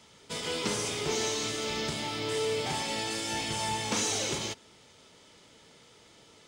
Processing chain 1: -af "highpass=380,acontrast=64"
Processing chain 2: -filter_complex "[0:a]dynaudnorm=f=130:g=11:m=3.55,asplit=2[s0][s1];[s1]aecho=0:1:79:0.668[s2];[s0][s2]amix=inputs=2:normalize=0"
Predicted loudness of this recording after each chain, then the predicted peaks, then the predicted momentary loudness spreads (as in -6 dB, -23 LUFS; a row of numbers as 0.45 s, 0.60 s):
-25.0 LUFS, -18.5 LUFS; -13.0 dBFS, -6.0 dBFS; 6 LU, 9 LU